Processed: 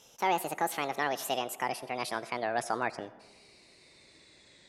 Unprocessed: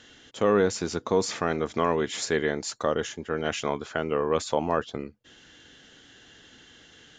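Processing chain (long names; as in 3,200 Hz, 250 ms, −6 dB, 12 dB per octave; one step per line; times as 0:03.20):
gliding playback speed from 187% → 120%
comb and all-pass reverb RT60 1.3 s, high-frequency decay 0.4×, pre-delay 35 ms, DRR 16.5 dB
level −6 dB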